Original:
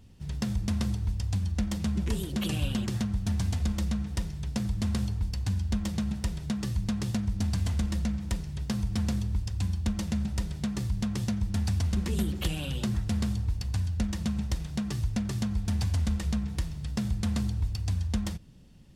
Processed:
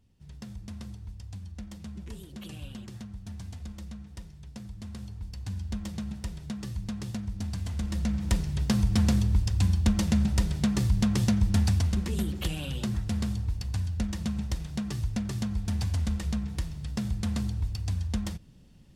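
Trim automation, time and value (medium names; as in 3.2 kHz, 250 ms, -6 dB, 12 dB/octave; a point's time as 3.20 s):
4.92 s -12 dB
5.61 s -5 dB
7.69 s -5 dB
8.35 s +5.5 dB
11.56 s +5.5 dB
12.07 s -1 dB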